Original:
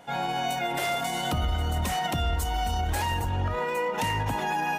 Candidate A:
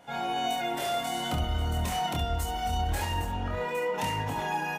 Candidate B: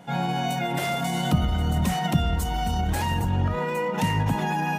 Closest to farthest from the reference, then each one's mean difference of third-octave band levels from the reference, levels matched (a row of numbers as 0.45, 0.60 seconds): A, B; 2.0, 3.5 decibels